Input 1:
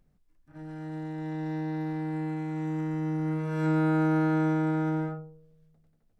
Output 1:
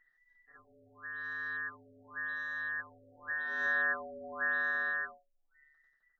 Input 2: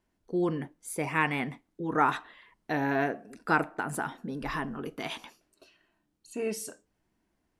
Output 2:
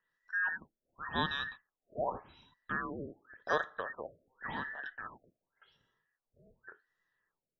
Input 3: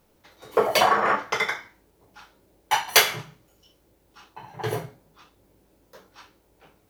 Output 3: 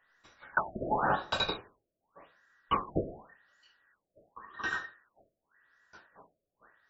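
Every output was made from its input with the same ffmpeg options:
-af "afftfilt=real='real(if(between(b,1,1012),(2*floor((b-1)/92)+1)*92-b,b),0)':imag='imag(if(between(b,1,1012),(2*floor((b-1)/92)+1)*92-b,b),0)*if(between(b,1,1012),-1,1)':win_size=2048:overlap=0.75,afftfilt=real='re*lt(b*sr/1024,670*pow(7700/670,0.5+0.5*sin(2*PI*0.89*pts/sr)))':imag='im*lt(b*sr/1024,670*pow(7700/670,0.5+0.5*sin(2*PI*0.89*pts/sr)))':win_size=1024:overlap=0.75,volume=0.501"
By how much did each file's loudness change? -5.0 LU, -6.5 LU, -10.5 LU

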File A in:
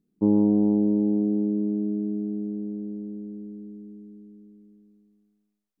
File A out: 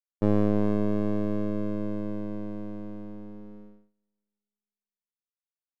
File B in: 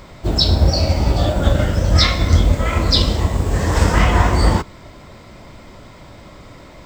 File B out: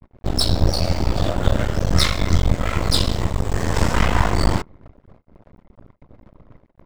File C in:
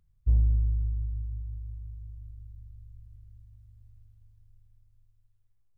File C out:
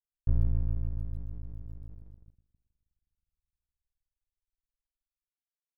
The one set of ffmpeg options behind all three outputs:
-af "anlmdn=2.51,agate=range=0.0398:threshold=0.00794:ratio=16:detection=peak,aeval=exprs='max(val(0),0)':c=same"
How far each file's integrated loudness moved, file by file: -4.5 LU, -4.5 LU, -3.5 LU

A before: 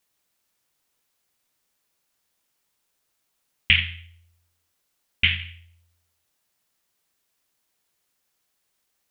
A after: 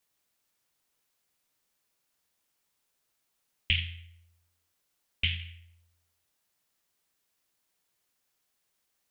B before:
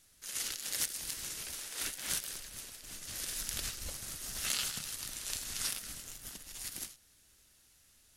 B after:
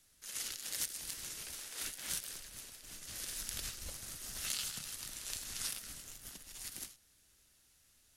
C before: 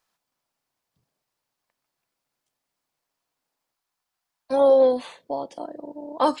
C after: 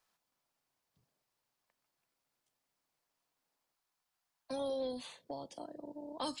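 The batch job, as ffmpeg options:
-filter_complex "[0:a]acrossover=split=180|3000[s0][s1][s2];[s1]acompressor=threshold=0.00631:ratio=2.5[s3];[s0][s3][s2]amix=inputs=3:normalize=0,volume=0.668"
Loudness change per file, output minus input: -9.5 LU, -3.5 LU, -21.0 LU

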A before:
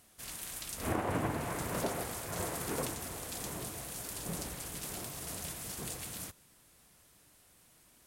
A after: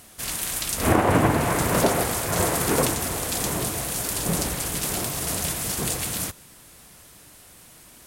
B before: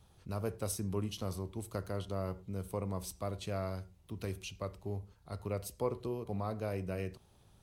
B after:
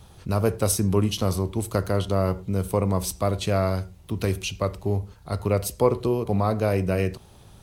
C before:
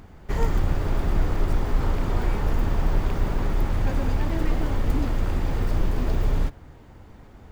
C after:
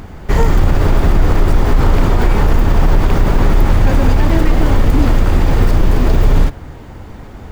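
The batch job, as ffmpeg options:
-af "alimiter=level_in=5.96:limit=0.891:release=50:level=0:latency=1,volume=0.891"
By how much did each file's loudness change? +14.5 LU, +14.5 LU, +12.0 LU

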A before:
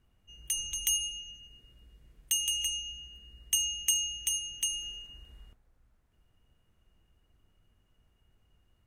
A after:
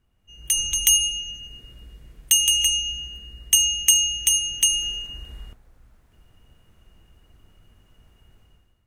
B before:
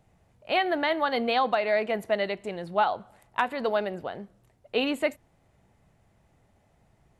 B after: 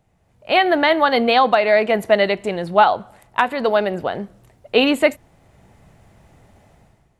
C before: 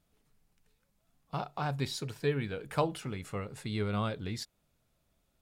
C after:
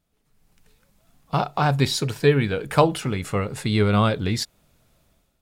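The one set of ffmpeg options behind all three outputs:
-af "dynaudnorm=f=120:g=7:m=4.73"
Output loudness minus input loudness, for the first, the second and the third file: +11.5 LU, +10.0 LU, +13.0 LU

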